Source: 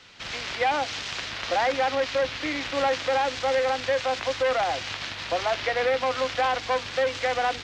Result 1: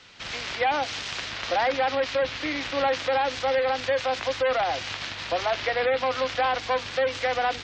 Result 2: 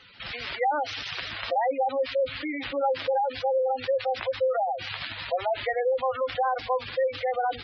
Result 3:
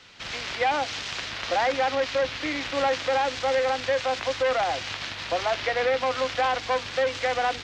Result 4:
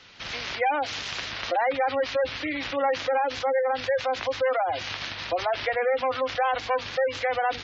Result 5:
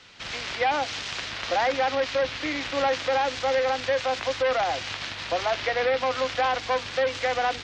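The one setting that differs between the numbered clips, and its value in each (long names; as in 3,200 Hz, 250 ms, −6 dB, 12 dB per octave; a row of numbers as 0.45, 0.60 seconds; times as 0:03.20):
gate on every frequency bin, under each frame's peak: −35, −10, −60, −20, −45 decibels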